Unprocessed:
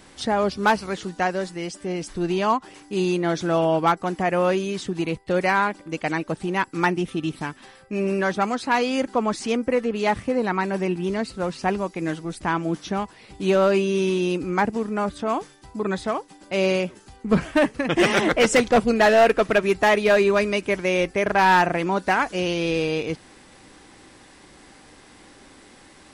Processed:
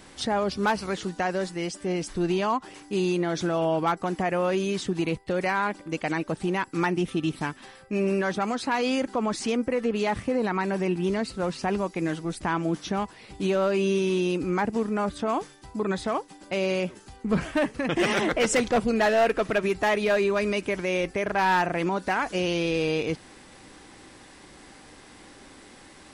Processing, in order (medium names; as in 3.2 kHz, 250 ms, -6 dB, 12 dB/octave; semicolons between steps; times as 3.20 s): peak limiter -16.5 dBFS, peak gain reduction 6 dB